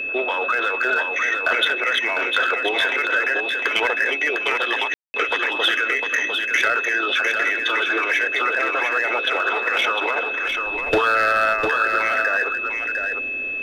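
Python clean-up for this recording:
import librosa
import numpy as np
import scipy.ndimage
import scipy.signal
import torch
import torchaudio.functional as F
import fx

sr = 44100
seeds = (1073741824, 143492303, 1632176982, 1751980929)

y = fx.notch(x, sr, hz=2600.0, q=30.0)
y = fx.fix_ambience(y, sr, seeds[0], print_start_s=13.11, print_end_s=13.61, start_s=4.94, end_s=5.14)
y = fx.noise_reduce(y, sr, print_start_s=13.11, print_end_s=13.61, reduce_db=30.0)
y = fx.fix_echo_inverse(y, sr, delay_ms=703, level_db=-5.5)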